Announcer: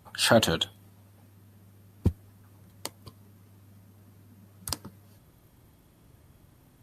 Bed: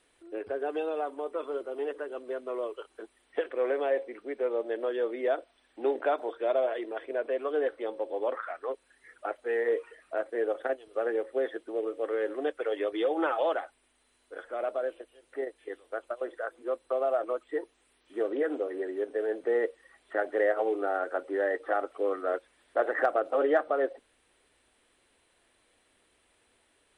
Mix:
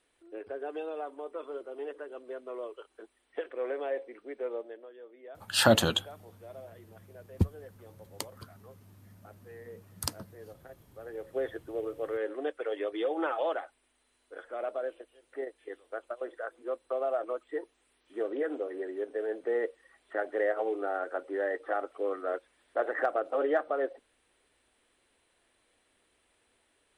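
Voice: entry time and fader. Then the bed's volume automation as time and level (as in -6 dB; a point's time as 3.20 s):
5.35 s, -1.0 dB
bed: 4.55 s -5.5 dB
4.90 s -20 dB
10.92 s -20 dB
11.36 s -3 dB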